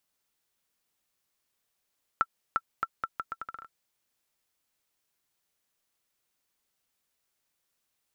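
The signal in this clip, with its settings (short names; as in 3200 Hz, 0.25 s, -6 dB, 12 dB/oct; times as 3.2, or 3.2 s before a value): bouncing ball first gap 0.35 s, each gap 0.77, 1340 Hz, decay 47 ms -12 dBFS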